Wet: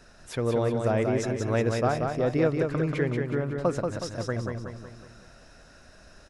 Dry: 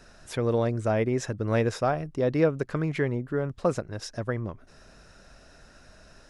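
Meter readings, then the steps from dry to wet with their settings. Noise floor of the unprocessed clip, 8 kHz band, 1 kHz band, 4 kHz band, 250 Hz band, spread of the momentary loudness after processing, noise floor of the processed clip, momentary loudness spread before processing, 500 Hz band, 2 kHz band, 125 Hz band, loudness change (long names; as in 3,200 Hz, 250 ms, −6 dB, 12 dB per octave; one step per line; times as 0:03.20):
−54 dBFS, +0.5 dB, +0.5 dB, +0.5 dB, +0.5 dB, 10 LU, −53 dBFS, 9 LU, +0.5 dB, +0.5 dB, +0.5 dB, +0.5 dB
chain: repeating echo 184 ms, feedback 49%, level −4.5 dB
level −1 dB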